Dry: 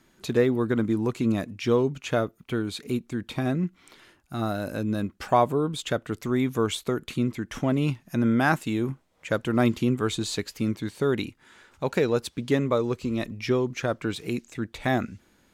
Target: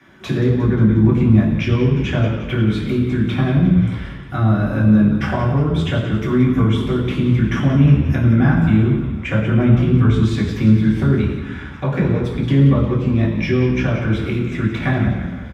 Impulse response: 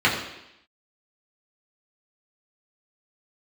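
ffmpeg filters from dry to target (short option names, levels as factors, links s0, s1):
-filter_complex "[0:a]acrossover=split=220[s0][s1];[s1]acompressor=threshold=0.0158:ratio=10[s2];[s0][s2]amix=inputs=2:normalize=0,asplit=7[s3][s4][s5][s6][s7][s8][s9];[s4]adelay=178,afreqshift=-67,volume=0.282[s10];[s5]adelay=356,afreqshift=-134,volume=0.158[s11];[s6]adelay=534,afreqshift=-201,volume=0.0881[s12];[s7]adelay=712,afreqshift=-268,volume=0.0495[s13];[s8]adelay=890,afreqshift=-335,volume=0.0279[s14];[s9]adelay=1068,afreqshift=-402,volume=0.0155[s15];[s3][s10][s11][s12][s13][s14][s15]amix=inputs=7:normalize=0[s16];[1:a]atrim=start_sample=2205,asetrate=33516,aresample=44100[s17];[s16][s17]afir=irnorm=-1:irlink=0,volume=0.531"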